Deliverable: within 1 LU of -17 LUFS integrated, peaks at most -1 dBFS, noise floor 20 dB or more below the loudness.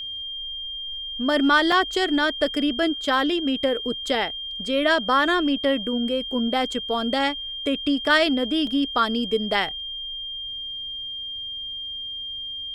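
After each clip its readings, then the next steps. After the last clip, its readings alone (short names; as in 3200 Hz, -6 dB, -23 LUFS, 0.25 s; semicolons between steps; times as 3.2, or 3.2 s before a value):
dropouts 2; longest dropout 2.1 ms; steady tone 3200 Hz; tone level -30 dBFS; loudness -23.5 LUFS; peak -6.0 dBFS; loudness target -17.0 LUFS
-> interpolate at 1.72/8.67, 2.1 ms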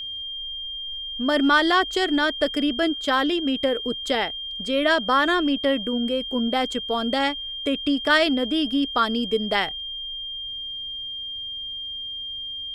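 dropouts 0; steady tone 3200 Hz; tone level -30 dBFS
-> notch 3200 Hz, Q 30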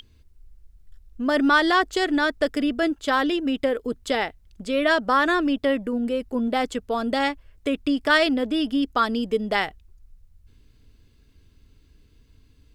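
steady tone none; loudness -23.0 LUFS; peak -6.0 dBFS; loudness target -17.0 LUFS
-> gain +6 dB; limiter -1 dBFS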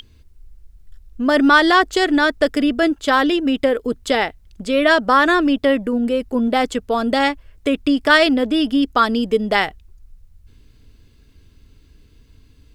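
loudness -17.0 LUFS; peak -1.0 dBFS; noise floor -51 dBFS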